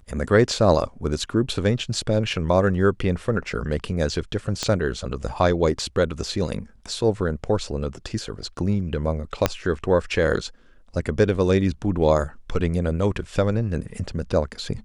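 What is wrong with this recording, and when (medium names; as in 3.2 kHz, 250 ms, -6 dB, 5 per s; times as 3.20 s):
4.63 s: pop -11 dBFS
9.46 s: pop -3 dBFS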